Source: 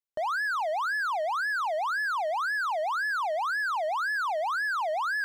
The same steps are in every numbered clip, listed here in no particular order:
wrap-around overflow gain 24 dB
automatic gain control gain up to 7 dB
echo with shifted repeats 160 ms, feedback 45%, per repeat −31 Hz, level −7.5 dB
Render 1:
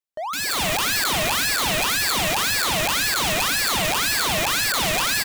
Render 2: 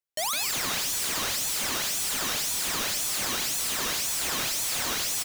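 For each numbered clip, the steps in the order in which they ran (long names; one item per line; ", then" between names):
echo with shifted repeats, then wrap-around overflow, then automatic gain control
echo with shifted repeats, then automatic gain control, then wrap-around overflow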